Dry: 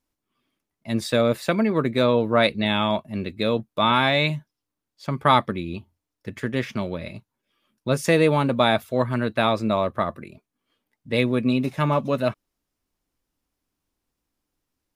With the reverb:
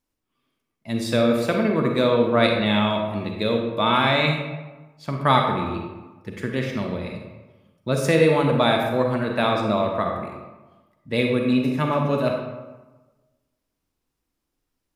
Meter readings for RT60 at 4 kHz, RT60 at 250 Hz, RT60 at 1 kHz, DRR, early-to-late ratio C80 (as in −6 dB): 0.70 s, 1.3 s, 1.2 s, 2.0 dB, 5.5 dB